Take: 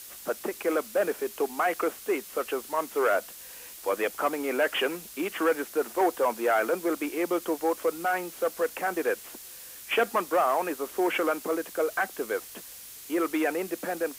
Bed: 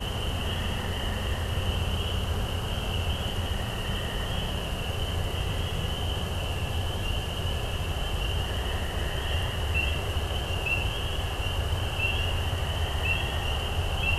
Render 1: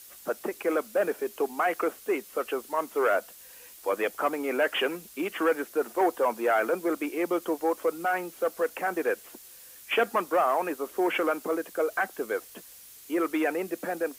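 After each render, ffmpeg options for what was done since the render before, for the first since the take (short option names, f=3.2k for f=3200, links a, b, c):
-af "afftdn=nr=6:nf=-45"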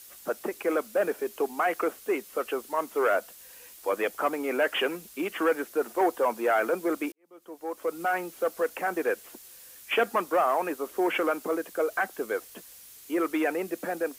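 -filter_complex "[0:a]asplit=2[a][b];[a]atrim=end=7.12,asetpts=PTS-STARTPTS,afade=t=out:st=7.116:d=0.004:c=hsin[c];[b]atrim=start=7.12,asetpts=PTS-STARTPTS,afade=t=in:d=0.9:c=qua[d];[c][d]concat=n=2:v=0:a=1"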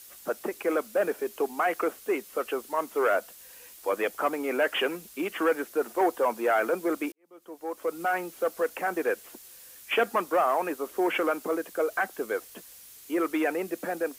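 -af anull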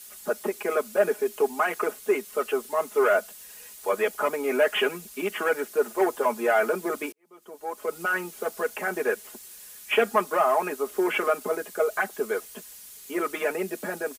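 -af "equalizer=f=8.6k:t=o:w=0.77:g=3,aecho=1:1:4.8:0.92"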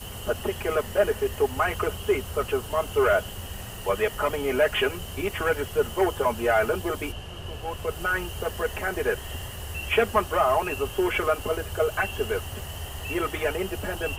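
-filter_complex "[1:a]volume=-7.5dB[a];[0:a][a]amix=inputs=2:normalize=0"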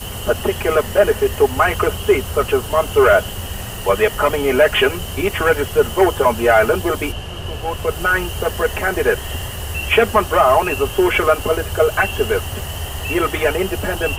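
-af "volume=9.5dB,alimiter=limit=-2dB:level=0:latency=1"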